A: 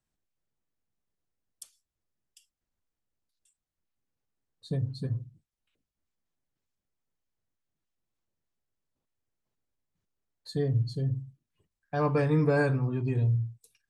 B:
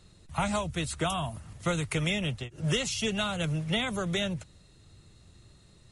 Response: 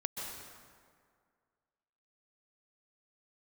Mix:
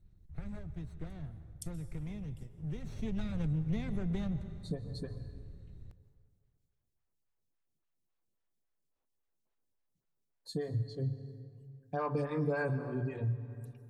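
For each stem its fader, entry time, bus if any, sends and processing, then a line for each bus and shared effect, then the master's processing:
-2.0 dB, 0.00 s, send -9.5 dB, lamp-driven phase shifter 3.6 Hz
2.71 s -23 dB -> 3.22 s -10.5 dB, 0.00 s, send -11 dB, comb filter that takes the minimum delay 0.51 ms; tilt EQ -4.5 dB/octave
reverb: on, RT60 2.0 s, pre-delay 118 ms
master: compression 2:1, threshold -34 dBFS, peak gain reduction 7.5 dB

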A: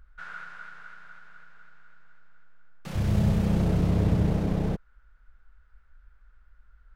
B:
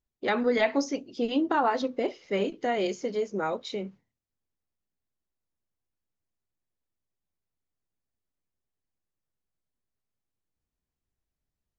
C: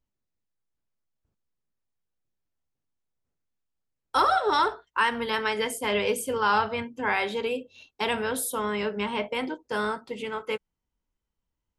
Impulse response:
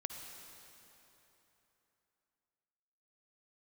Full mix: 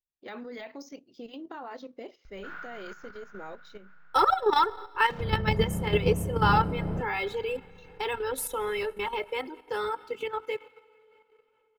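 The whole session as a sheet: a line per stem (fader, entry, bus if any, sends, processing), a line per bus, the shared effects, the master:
+0.5 dB, 2.25 s, bus A, send -8 dB, low-pass that closes with the level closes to 1.3 kHz, closed at -20 dBFS; low-pass 1.8 kHz 6 dB/octave
-11.0 dB, 0.00 s, bus A, no send, none
-1.5 dB, 0.00 s, no bus, send -12 dB, gate with hold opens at -42 dBFS; reverb removal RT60 0.91 s; comb 2.3 ms, depth 84%
bus A: 0.0 dB, treble shelf 2.5 kHz +4 dB; peak limiter -20 dBFS, peak gain reduction 7.5 dB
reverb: on, RT60 3.4 s, pre-delay 48 ms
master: level held to a coarse grid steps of 10 dB; decimation joined by straight lines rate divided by 2×

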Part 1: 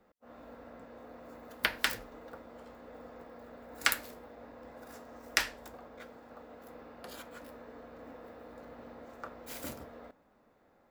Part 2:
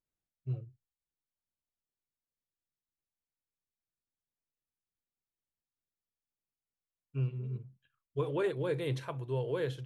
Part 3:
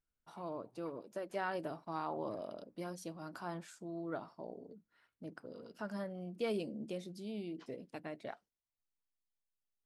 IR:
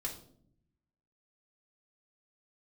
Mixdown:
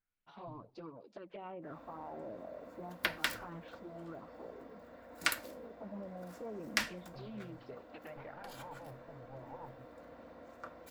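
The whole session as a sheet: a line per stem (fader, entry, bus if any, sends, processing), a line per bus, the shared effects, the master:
-2.5 dB, 1.40 s, no bus, no send, hum notches 60/120/180/240 Hz; comb of notches 420 Hz
-14.5 dB, 0.00 s, bus A, no send, comb filter that takes the minimum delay 1.3 ms; compression, threshold -35 dBFS, peak gain reduction 7 dB
-0.5 dB, 0.00 s, bus A, no send, low-pass that closes with the level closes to 1.8 kHz, closed at -39.5 dBFS; touch-sensitive flanger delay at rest 10.4 ms, full sweep at -35 dBFS
bus A: 0.0 dB, LFO low-pass sine 0.3 Hz 620–5000 Hz; peak limiter -38.5 dBFS, peak gain reduction 11 dB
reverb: none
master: loudspeaker Doppler distortion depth 0.14 ms

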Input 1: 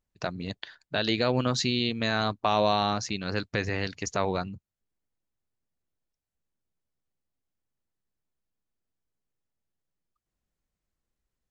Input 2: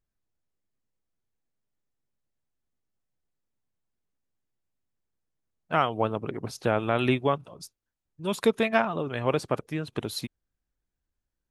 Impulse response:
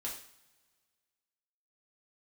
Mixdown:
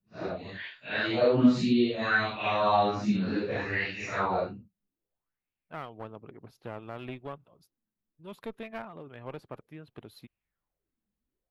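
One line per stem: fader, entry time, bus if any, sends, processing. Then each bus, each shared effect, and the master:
-5.5 dB, 0.00 s, no send, phase randomisation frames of 200 ms; treble shelf 5.8 kHz +4.5 dB; sweeping bell 0.63 Hz 200–2600 Hz +16 dB
-14.5 dB, 0.00 s, no send, peaking EQ 8.8 kHz -12.5 dB 0.28 oct; one-sided clip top -26.5 dBFS, bottom -11 dBFS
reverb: none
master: peaking EQ 6.3 kHz -11.5 dB 1 oct

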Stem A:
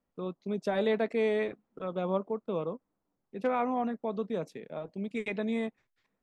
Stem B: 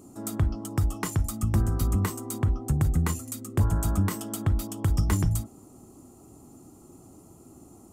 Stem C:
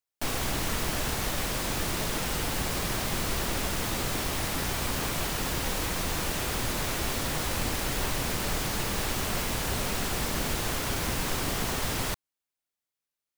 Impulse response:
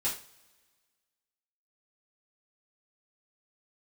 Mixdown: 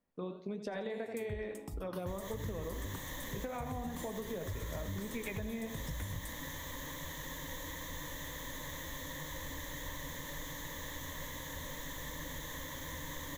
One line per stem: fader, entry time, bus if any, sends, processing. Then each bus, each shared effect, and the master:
+3.0 dB, 0.00 s, bus A, no send, echo send -13.5 dB, flange 1.7 Hz, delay 9.5 ms, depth 8.1 ms, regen -65%; band-stop 1.3 kHz, Q 17
-13.5 dB, 0.90 s, no bus, send -17.5 dB, no echo send, stepped phaser 3.4 Hz 300–3000 Hz
-16.5 dB, 1.85 s, bus A, no send, no echo send, rippled EQ curve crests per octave 1.1, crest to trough 15 dB
bus A: 0.0 dB, peaking EQ 1.8 kHz +4.5 dB 0.27 oct; compression, threshold -32 dBFS, peak gain reduction 8 dB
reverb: on, pre-delay 3 ms
echo: feedback delay 84 ms, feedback 40%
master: compression, threshold -36 dBFS, peak gain reduction 9 dB

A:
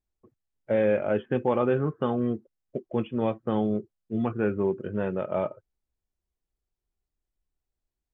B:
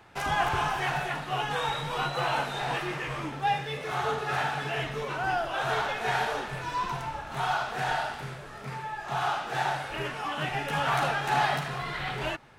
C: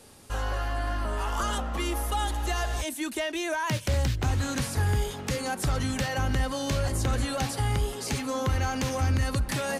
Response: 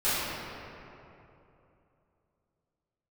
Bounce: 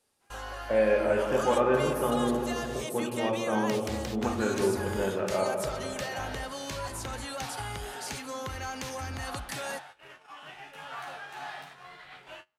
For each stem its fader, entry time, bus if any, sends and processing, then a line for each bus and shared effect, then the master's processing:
-1.0 dB, 0.00 s, send -13 dB, none
-4.5 dB, 0.05 s, no send, feedback comb 90 Hz, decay 0.4 s, harmonics all, mix 80%; auto duck -18 dB, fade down 0.50 s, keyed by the first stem
-4.5 dB, 0.00 s, no send, none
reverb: on, RT60 2.9 s, pre-delay 3 ms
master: bass shelf 310 Hz -11 dB; gate -48 dBFS, range -16 dB

